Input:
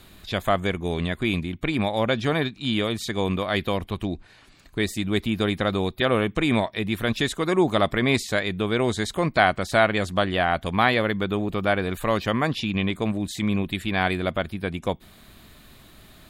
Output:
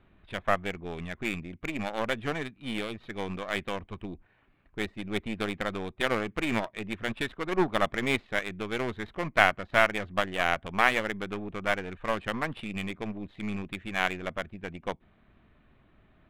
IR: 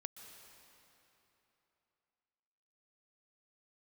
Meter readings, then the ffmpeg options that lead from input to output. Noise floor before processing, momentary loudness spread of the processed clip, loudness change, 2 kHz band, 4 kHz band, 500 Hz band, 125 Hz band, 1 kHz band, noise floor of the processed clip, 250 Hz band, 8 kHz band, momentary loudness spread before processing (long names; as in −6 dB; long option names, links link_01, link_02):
−52 dBFS, 13 LU, −6.5 dB, −3.0 dB, −8.0 dB, −7.5 dB, −12.0 dB, −5.0 dB, −64 dBFS, −9.5 dB, −8.0 dB, 7 LU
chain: -af "aeval=exprs='0.708*(cos(1*acos(clip(val(0)/0.708,-1,1)))-cos(1*PI/2))+0.1*(cos(3*acos(clip(val(0)/0.708,-1,1)))-cos(3*PI/2))+0.0447*(cos(4*acos(clip(val(0)/0.708,-1,1)))-cos(4*PI/2))+0.0708*(cos(6*acos(clip(val(0)/0.708,-1,1)))-cos(6*PI/2))+0.0282*(cos(7*acos(clip(val(0)/0.708,-1,1)))-cos(7*PI/2))':channel_layout=same,highshelf=frequency=4100:width_type=q:width=1.5:gain=-13.5,adynamicsmooth=sensitivity=7.5:basefreq=2000"